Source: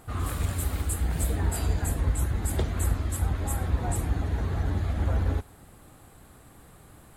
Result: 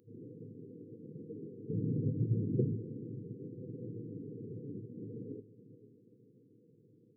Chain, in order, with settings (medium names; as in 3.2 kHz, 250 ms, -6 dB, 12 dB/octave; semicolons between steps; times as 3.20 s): FFT band-pass 100–510 Hz; tilt EQ +3.5 dB/octave, from 1.69 s -2.5 dB/octave, from 2.75 s +2.5 dB/octave; echo that smears into a reverb 467 ms, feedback 46%, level -14.5 dB; trim -3.5 dB